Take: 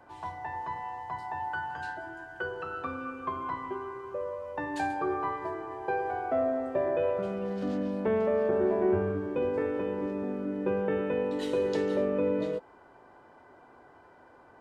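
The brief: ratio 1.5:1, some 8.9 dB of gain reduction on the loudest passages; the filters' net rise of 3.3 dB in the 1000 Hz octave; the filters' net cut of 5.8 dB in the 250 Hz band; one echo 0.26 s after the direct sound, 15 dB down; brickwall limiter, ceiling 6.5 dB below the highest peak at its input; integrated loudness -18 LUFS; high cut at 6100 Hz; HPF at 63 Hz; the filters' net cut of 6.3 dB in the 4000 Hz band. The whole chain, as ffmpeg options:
-af "highpass=63,lowpass=6.1k,equalizer=f=250:t=o:g=-8.5,equalizer=f=1k:t=o:g=5,equalizer=f=4k:t=o:g=-8.5,acompressor=threshold=-50dB:ratio=1.5,alimiter=level_in=8dB:limit=-24dB:level=0:latency=1,volume=-8dB,aecho=1:1:260:0.178,volume=23dB"

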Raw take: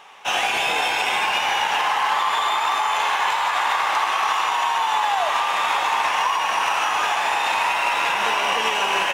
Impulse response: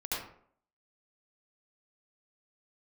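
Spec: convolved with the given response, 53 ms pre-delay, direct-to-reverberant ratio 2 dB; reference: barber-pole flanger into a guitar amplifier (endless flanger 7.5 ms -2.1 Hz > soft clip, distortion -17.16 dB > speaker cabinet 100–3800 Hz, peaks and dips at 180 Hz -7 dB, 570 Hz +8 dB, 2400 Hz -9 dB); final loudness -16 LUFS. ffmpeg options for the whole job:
-filter_complex "[0:a]asplit=2[a][b];[1:a]atrim=start_sample=2205,adelay=53[c];[b][c]afir=irnorm=-1:irlink=0,volume=-6.5dB[d];[a][d]amix=inputs=2:normalize=0,asplit=2[e][f];[f]adelay=7.5,afreqshift=-2.1[g];[e][g]amix=inputs=2:normalize=1,asoftclip=threshold=-16dB,highpass=100,equalizer=f=180:t=q:w=4:g=-7,equalizer=f=570:t=q:w=4:g=8,equalizer=f=2.4k:t=q:w=4:g=-9,lowpass=f=3.8k:w=0.5412,lowpass=f=3.8k:w=1.3066,volume=7.5dB"

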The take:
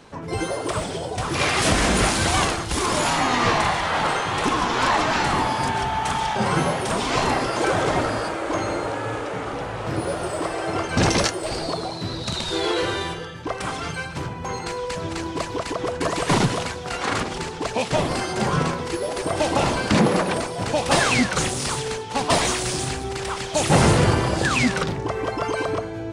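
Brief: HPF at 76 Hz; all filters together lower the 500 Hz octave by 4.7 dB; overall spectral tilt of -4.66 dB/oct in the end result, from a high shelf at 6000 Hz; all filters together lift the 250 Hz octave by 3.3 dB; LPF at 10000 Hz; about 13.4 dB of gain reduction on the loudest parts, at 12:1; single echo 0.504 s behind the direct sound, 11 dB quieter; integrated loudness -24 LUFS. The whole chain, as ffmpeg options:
-af "highpass=76,lowpass=10k,equalizer=f=250:t=o:g=7,equalizer=f=500:t=o:g=-8.5,highshelf=f=6k:g=-6.5,acompressor=threshold=-25dB:ratio=12,aecho=1:1:504:0.282,volume=5.5dB"

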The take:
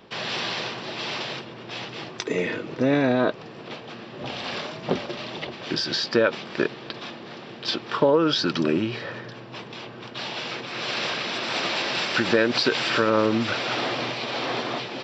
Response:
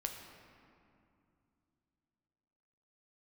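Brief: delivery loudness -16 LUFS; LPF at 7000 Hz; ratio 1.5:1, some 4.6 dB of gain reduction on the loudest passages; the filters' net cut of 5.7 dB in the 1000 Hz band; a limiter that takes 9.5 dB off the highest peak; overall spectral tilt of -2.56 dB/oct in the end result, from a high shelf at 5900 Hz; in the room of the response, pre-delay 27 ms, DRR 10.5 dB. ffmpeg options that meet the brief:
-filter_complex "[0:a]lowpass=7k,equalizer=f=1k:t=o:g=-7.5,highshelf=f=5.9k:g=-7.5,acompressor=threshold=-29dB:ratio=1.5,alimiter=limit=-21.5dB:level=0:latency=1,asplit=2[a][b];[1:a]atrim=start_sample=2205,adelay=27[c];[b][c]afir=irnorm=-1:irlink=0,volume=-10.5dB[d];[a][d]amix=inputs=2:normalize=0,volume=16dB"

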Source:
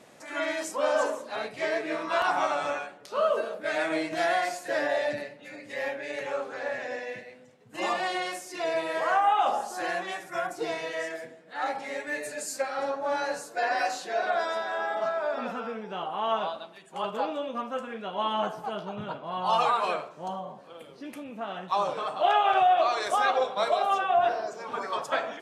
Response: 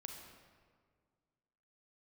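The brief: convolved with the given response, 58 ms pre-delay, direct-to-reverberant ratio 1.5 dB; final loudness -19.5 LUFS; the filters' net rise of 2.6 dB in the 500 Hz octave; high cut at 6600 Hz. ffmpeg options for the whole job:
-filter_complex "[0:a]lowpass=6.6k,equalizer=f=500:t=o:g=3.5,asplit=2[a][b];[1:a]atrim=start_sample=2205,adelay=58[c];[b][c]afir=irnorm=-1:irlink=0,volume=2.5dB[d];[a][d]amix=inputs=2:normalize=0,volume=5.5dB"

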